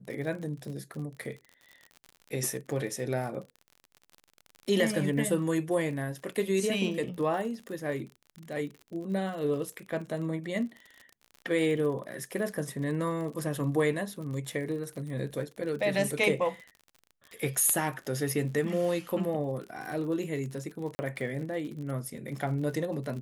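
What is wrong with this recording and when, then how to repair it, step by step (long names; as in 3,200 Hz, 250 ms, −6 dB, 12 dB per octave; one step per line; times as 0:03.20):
surface crackle 46 per second −38 dBFS
0:20.95–0:20.99: drop-out 40 ms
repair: click removal
repair the gap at 0:20.95, 40 ms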